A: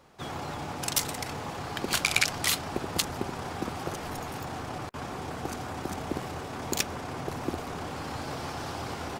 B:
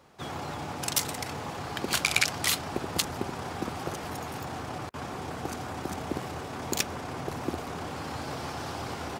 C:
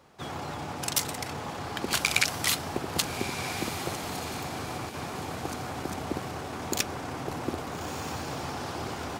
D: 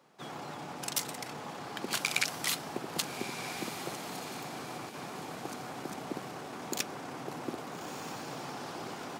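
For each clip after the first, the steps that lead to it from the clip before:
high-pass filter 50 Hz
feedback delay with all-pass diffusion 1,283 ms, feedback 40%, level −9 dB
high-pass filter 140 Hz 24 dB per octave; level −5.5 dB

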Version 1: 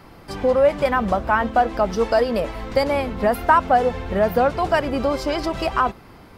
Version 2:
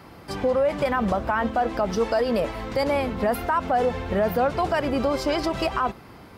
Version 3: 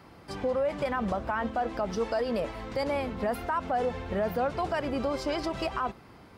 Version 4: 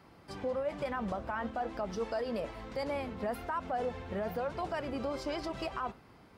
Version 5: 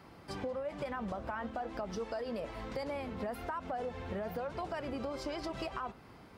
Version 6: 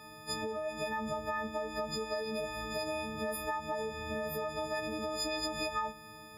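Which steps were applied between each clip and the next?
brickwall limiter −14 dBFS, peak gain reduction 11 dB; high-pass filter 57 Hz
parametric band 13,000 Hz −8 dB 0.32 octaves; level −6.5 dB
flanger 1.1 Hz, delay 4.3 ms, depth 6.2 ms, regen −83%; level −1.5 dB
downward compressor 4 to 1, threshold −39 dBFS, peak gain reduction 8.5 dB; level +3 dB
every partial snapped to a pitch grid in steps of 6 semitones

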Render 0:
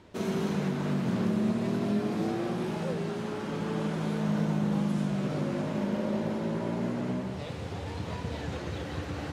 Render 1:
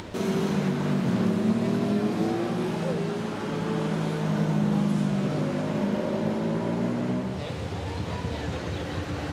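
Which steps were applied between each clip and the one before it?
hum removal 70.41 Hz, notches 39
upward compression, threshold −33 dBFS
level +4.5 dB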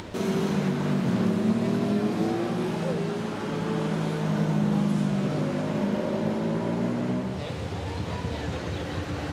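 no processing that can be heard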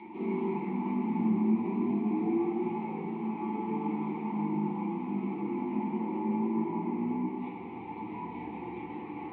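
formant filter u
loudspeaker in its box 180–3,200 Hz, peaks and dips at 290 Hz −10 dB, 590 Hz −7 dB, 1,400 Hz −10 dB
convolution reverb RT60 1.2 s, pre-delay 7 ms, DRR −9 dB

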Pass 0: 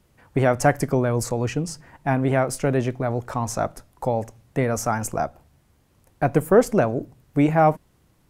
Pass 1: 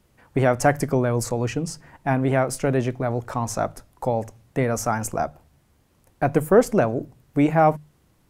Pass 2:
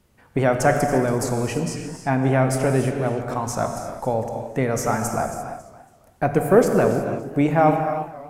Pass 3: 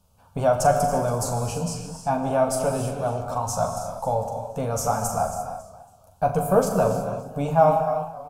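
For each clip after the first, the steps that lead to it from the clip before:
mains-hum notches 50/100/150 Hz
reverb whose tail is shaped and stops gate 370 ms flat, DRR 4.5 dB; feedback echo with a swinging delay time 278 ms, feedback 30%, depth 146 cents, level −15 dB
phaser with its sweep stopped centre 800 Hz, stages 4; on a send: ambience of single reflections 11 ms −6.5 dB, 42 ms −8.5 dB

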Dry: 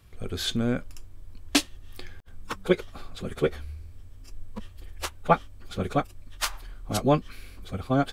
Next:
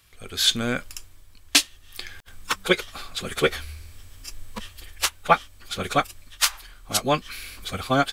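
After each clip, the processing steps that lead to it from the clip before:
tilt shelving filter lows −8.5 dB, about 930 Hz
automatic gain control gain up to 9.5 dB
level −1 dB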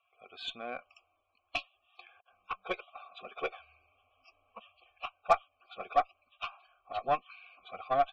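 formant filter a
spectral peaks only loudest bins 64
harmonic generator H 8 −27 dB, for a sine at −11 dBFS

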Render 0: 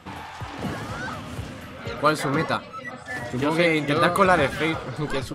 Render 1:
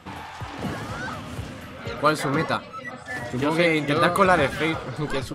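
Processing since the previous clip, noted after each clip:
no processing that can be heard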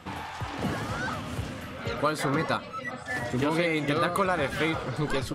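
downward compressor 6 to 1, threshold −22 dBFS, peak gain reduction 9.5 dB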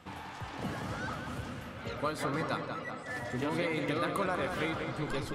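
feedback echo with a low-pass in the loop 188 ms, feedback 62%, low-pass 3,800 Hz, level −6 dB
level −7.5 dB

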